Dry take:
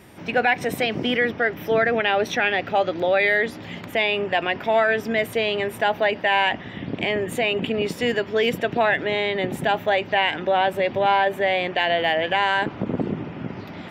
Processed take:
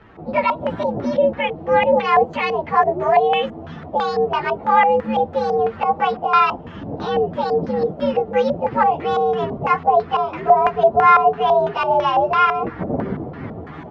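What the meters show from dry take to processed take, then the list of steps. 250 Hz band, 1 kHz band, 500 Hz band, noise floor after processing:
+1.5 dB, +8.0 dB, +3.5 dB, -36 dBFS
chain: inharmonic rescaling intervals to 124%; LFO low-pass square 3 Hz 680–1700 Hz; gain +4.5 dB

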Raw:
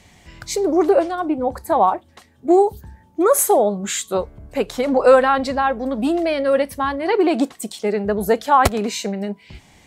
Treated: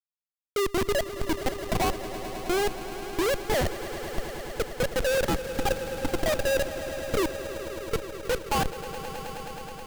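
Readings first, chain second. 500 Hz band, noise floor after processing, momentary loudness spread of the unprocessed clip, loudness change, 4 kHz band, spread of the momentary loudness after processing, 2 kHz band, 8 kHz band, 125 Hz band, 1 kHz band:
-10.5 dB, under -85 dBFS, 11 LU, -11.0 dB, -2.5 dB, 10 LU, -5.0 dB, -10.0 dB, -2.0 dB, -13.0 dB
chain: sine-wave speech; Schmitt trigger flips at -17 dBFS; swelling echo 0.106 s, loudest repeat 5, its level -15 dB; gain -5 dB

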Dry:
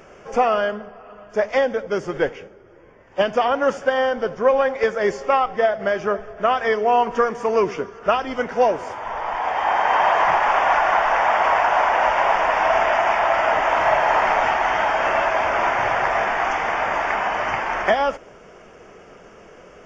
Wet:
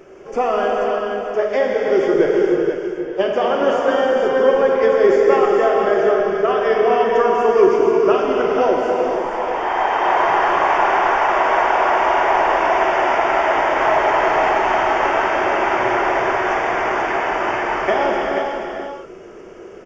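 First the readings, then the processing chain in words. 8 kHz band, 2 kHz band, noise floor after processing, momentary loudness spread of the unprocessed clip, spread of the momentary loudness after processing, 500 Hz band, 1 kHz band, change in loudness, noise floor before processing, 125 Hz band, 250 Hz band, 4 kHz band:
n/a, +1.0 dB, -36 dBFS, 8 LU, 7 LU, +5.5 dB, +1.5 dB, +3.0 dB, -46 dBFS, +2.0 dB, +8.5 dB, +1.0 dB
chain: bell 360 Hz +13.5 dB 0.59 oct; on a send: echo 0.485 s -6.5 dB; on the sum: non-linear reverb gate 0.49 s flat, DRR -2 dB; gain -4 dB

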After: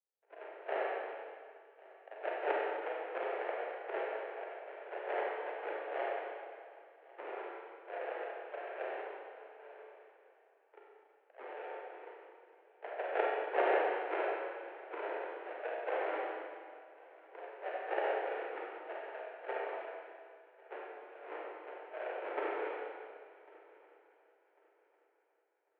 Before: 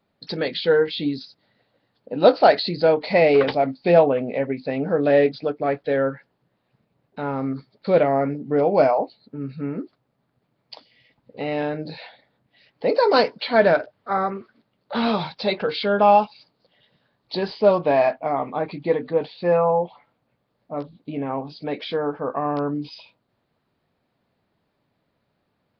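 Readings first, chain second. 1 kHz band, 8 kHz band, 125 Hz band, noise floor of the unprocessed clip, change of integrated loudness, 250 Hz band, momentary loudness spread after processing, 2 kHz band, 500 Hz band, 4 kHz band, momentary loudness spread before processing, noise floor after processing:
-16.0 dB, n/a, under -40 dB, -73 dBFS, -18.5 dB, -26.0 dB, 20 LU, -12.0 dB, -18.5 dB, -24.5 dB, 15 LU, -72 dBFS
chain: gate with hold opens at -39 dBFS; auto-wah 670–1700 Hz, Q 10, up, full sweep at -17 dBFS; sample-rate reducer 1000 Hz, jitter 20%; on a send: multi-head echo 0.366 s, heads first and third, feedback 45%, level -23 dB; on the sum: Schroeder reverb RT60 1.9 s, combs from 31 ms, DRR -3.5 dB; mistuned SSB +150 Hz 270–2400 Hz

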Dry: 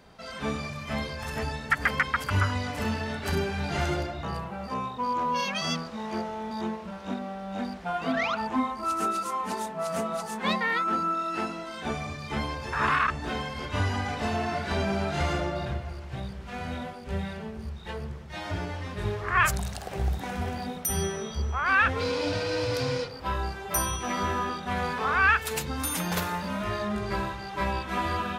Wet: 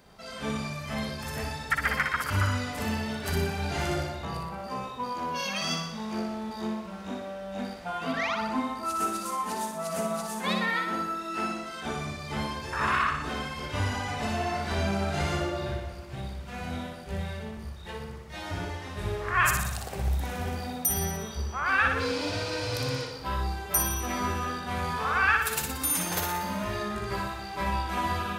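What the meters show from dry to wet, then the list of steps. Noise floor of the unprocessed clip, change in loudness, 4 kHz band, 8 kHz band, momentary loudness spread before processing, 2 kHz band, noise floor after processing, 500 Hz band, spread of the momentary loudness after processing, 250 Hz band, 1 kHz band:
-40 dBFS, -1.0 dB, 0.0 dB, +3.0 dB, 10 LU, -1.0 dB, -40 dBFS, -2.0 dB, 11 LU, -1.0 dB, -1.5 dB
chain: high shelf 7800 Hz +9.5 dB; on a send: flutter echo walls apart 10.3 m, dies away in 0.75 s; on the sum: gain -3 dB

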